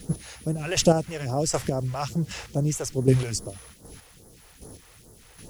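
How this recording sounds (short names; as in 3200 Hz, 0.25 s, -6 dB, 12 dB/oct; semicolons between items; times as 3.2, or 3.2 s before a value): chopped level 1.3 Hz, depth 60%, duty 20%; a quantiser's noise floor 10-bit, dither none; phasing stages 2, 2.4 Hz, lowest notch 200–2500 Hz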